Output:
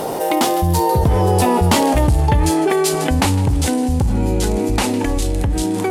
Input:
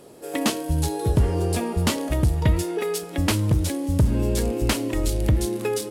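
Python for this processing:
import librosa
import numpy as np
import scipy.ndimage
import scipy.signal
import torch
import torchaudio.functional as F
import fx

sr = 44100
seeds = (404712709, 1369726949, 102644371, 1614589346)

y = fx.doppler_pass(x, sr, speed_mps=39, closest_m=27.0, pass_at_s=1.79)
y = fx.peak_eq(y, sr, hz=840.0, db=10.0, octaves=0.51)
y = fx.echo_wet_highpass(y, sr, ms=156, feedback_pct=51, hz=1500.0, wet_db=-20)
y = fx.env_flatten(y, sr, amount_pct=70)
y = y * 10.0 ** (4.5 / 20.0)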